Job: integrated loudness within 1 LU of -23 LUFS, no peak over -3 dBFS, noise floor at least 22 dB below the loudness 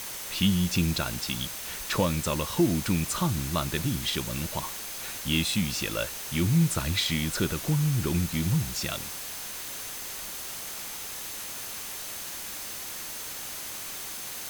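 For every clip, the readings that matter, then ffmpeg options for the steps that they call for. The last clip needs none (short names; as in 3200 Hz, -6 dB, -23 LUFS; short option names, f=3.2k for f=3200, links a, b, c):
steady tone 6300 Hz; tone level -48 dBFS; noise floor -38 dBFS; noise floor target -51 dBFS; loudness -29.0 LUFS; peak -12.0 dBFS; loudness target -23.0 LUFS
-> -af "bandreject=f=6.3k:w=30"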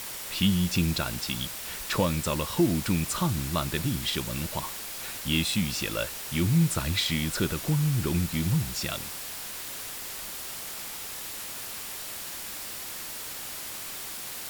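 steady tone none; noise floor -38 dBFS; noise floor target -51 dBFS
-> -af "afftdn=nr=13:nf=-38"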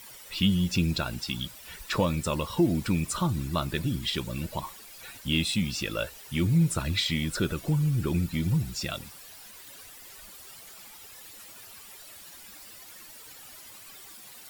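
noise floor -48 dBFS; noise floor target -51 dBFS
-> -af "afftdn=nr=6:nf=-48"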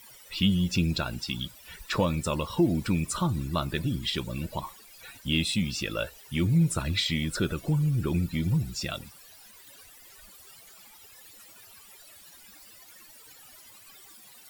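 noise floor -52 dBFS; loudness -28.5 LUFS; peak -12.0 dBFS; loudness target -23.0 LUFS
-> -af "volume=5.5dB"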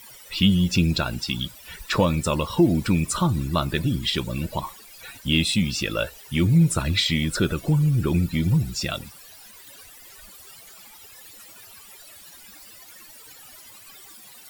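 loudness -23.0 LUFS; peak -6.5 dBFS; noise floor -47 dBFS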